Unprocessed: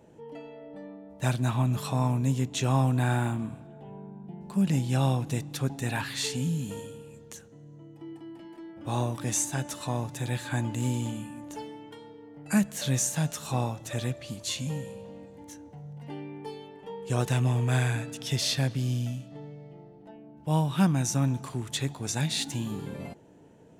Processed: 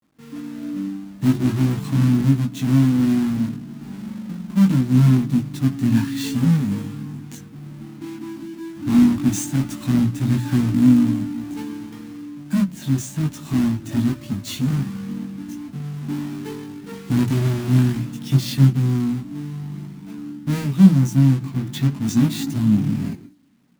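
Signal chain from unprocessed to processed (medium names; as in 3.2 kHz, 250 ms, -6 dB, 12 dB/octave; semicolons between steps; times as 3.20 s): square wave that keeps the level; hum notches 60/120/180 Hz; gate with hold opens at -43 dBFS; high-pass 130 Hz 6 dB/octave; resonant low shelf 360 Hz +11 dB, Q 3; level rider gain up to 4.5 dB; chorus voices 4, 0.17 Hz, delay 19 ms, depth 3.1 ms; bit crusher 11-bit; trim -1.5 dB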